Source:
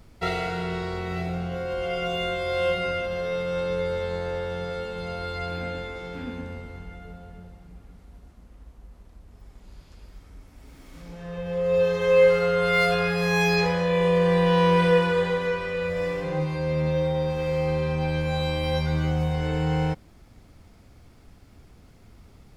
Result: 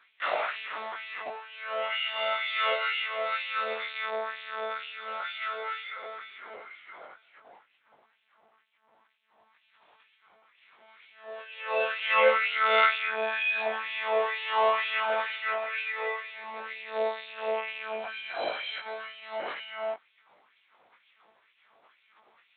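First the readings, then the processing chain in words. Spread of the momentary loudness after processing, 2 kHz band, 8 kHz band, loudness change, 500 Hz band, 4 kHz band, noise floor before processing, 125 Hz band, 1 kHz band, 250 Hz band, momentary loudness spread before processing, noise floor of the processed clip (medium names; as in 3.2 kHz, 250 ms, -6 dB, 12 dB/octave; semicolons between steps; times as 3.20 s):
16 LU, 0.0 dB, no reading, -5.0 dB, -9.0 dB, -0.5 dB, -52 dBFS, under -40 dB, -0.5 dB, -27.0 dB, 15 LU, -69 dBFS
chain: monotone LPC vocoder at 8 kHz 220 Hz; LFO high-pass sine 2.1 Hz 670–2700 Hz; chorus 0.23 Hz, delay 18 ms, depth 3.4 ms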